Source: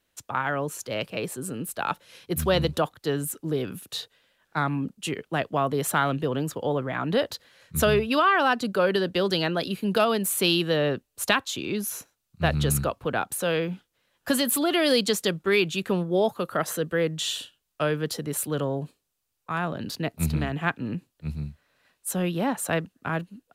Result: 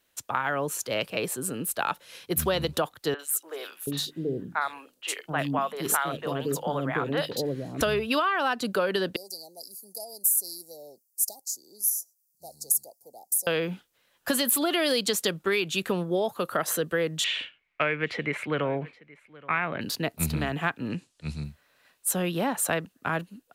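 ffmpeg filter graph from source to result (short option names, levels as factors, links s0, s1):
-filter_complex "[0:a]asettb=1/sr,asplit=3[s0][s1][s2];[s0]atrim=end=3.144[s3];[s1]atrim=start=3.14:end=7.81,asetpts=PTS-STARTPTS,afade=t=in:d=0.004:c=qsin,afade=t=out:st=4.666:d=0.004:c=qsin,bandreject=f=50:t=h:w=6,bandreject=f=100:t=h:w=6,bandreject=f=150:t=h:w=6,bandreject=f=200:t=h:w=6,bandreject=f=250:t=h:w=6,bandreject=f=300:t=h:w=6,bandreject=f=350:t=h:w=6,acrossover=split=530|3000[s4][s5][s6];[s6]adelay=50[s7];[s4]adelay=730[s8];[s8][s5][s7]amix=inputs=3:normalize=0,atrim=end_sample=205947[s9];[s2]atrim=start=7.806[s10];[s3][s9]acrossfade=d=0.004:c1=hsin:c2=qsin[s11];[s11][s10]acrossfade=d=0.004:c1=qsin:c2=hsin,asettb=1/sr,asplit=3[s12][s13][s14];[s12]atrim=end=9.164[s15];[s13]atrim=start=9.16:end=13.47,asetpts=PTS-STARTPTS,afade=t=in:d=0.004:c=qsin,afade=t=out:st=4.306:d=0.004:c=qsin,asuperstop=centerf=2000:order=20:qfactor=0.52,aderivative[s16];[s14]atrim=start=13.466[s17];[s15][s16]acrossfade=d=0.004:c1=hsin:c2=qsin[s18];[s18][s17]acrossfade=d=0.004:c1=qsin:c2=hsin,asettb=1/sr,asplit=3[s19][s20][s21];[s19]atrim=end=17.244[s22];[s20]atrim=start=17.24:end=19.81,asetpts=PTS-STARTPTS,afade=t=in:d=0.004:c=qsin,afade=t=out:st=2.566:d=0.004:c=qsin,lowpass=f=2200:t=q:w=12,aecho=1:1:823:0.0708,atrim=end_sample=113337[s23];[s21]atrim=start=19.806[s24];[s22][s23]acrossfade=d=0.004:c1=hsin:c2=qsin[s25];[s25][s24]acrossfade=d=0.004:c1=qsin:c2=hsin,asettb=1/sr,asplit=3[s26][s27][s28];[s26]atrim=end=20.904[s29];[s27]atrim=start=20.9:end=21.44,asetpts=PTS-STARTPTS,afade=t=in:d=0.004:c=qsin,afade=t=out:st=0.536:d=0.004:c=qsin,lowpass=f=9300:w=0.5412,lowpass=f=9300:w=1.3066,equalizer=f=6900:w=0.38:g=7.5[s30];[s28]atrim=start=21.436[s31];[s29][s30]acrossfade=d=0.004:c1=hsin:c2=qsin[s32];[s32][s31]acrossfade=d=0.004:c1=qsin:c2=hsin,lowshelf=f=260:g=-7,acompressor=threshold=0.0562:ratio=6,highshelf=f=11000:g=5.5,volume=1.41"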